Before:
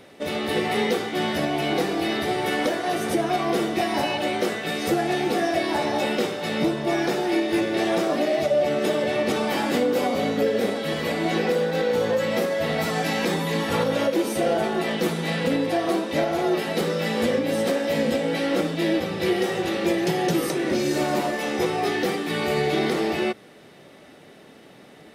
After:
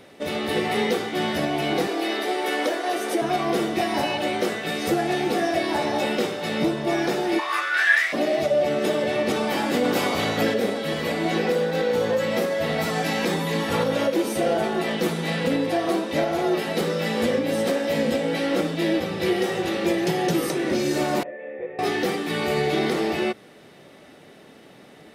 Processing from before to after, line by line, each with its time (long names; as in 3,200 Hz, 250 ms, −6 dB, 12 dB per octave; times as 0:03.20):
0:01.87–0:03.22: high-pass filter 280 Hz 24 dB per octave
0:07.38–0:08.12: high-pass with resonance 980 Hz → 2,100 Hz, resonance Q 16
0:09.83–0:10.53: ceiling on every frequency bin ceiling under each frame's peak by 14 dB
0:21.23–0:21.79: formant resonators in series e